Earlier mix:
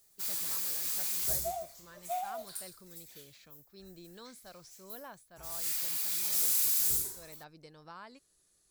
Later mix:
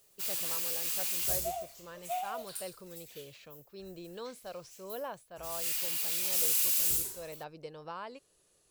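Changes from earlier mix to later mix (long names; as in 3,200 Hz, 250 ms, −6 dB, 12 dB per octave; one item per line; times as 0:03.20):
speech: add octave-band graphic EQ 125/500/1,000 Hz +5/+11/+5 dB
master: add parametric band 2,800 Hz +9.5 dB 0.43 octaves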